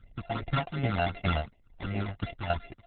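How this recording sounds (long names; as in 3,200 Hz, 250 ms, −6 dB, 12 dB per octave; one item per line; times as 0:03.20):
a buzz of ramps at a fixed pitch in blocks of 64 samples
tremolo saw down 2.4 Hz, depth 60%
phaser sweep stages 12, 2.7 Hz, lowest notch 360–1,300 Hz
Opus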